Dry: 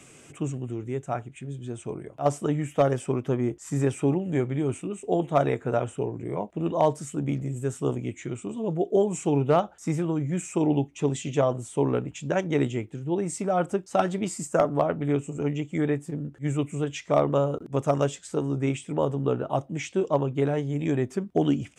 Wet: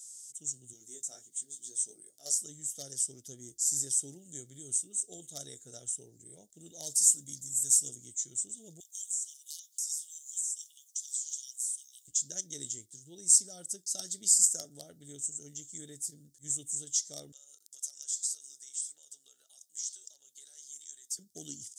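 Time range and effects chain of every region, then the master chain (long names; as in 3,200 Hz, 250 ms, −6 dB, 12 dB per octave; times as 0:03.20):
0:00.73–0:02.35: high-pass filter 260 Hz + double-tracking delay 19 ms −3 dB
0:06.86–0:07.89: high-shelf EQ 3,600 Hz +8 dB + notch comb filter 390 Hz
0:08.80–0:12.08: linear-phase brick-wall high-pass 2,800 Hz + high-shelf EQ 7,400 Hz +10 dB + downward compressor 12 to 1, threshold −45 dBFS
0:17.32–0:21.19: high-pass filter 1,300 Hz + downward compressor 5 to 1, threshold −42 dBFS
whole clip: automatic gain control gain up to 8 dB; inverse Chebyshev high-pass filter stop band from 2,700 Hz, stop band 40 dB; level +7.5 dB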